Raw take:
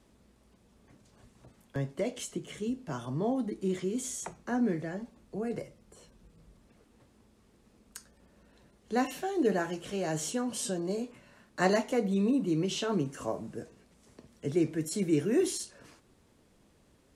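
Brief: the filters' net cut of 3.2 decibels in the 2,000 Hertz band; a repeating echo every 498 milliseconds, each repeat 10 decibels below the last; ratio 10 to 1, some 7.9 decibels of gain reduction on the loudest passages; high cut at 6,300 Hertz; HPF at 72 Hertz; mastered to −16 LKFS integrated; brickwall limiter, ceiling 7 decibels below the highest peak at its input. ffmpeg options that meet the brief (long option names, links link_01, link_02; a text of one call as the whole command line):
ffmpeg -i in.wav -af "highpass=72,lowpass=6300,equalizer=frequency=2000:width_type=o:gain=-4,acompressor=threshold=-30dB:ratio=10,alimiter=level_in=4.5dB:limit=-24dB:level=0:latency=1,volume=-4.5dB,aecho=1:1:498|996|1494|1992:0.316|0.101|0.0324|0.0104,volume=22.5dB" out.wav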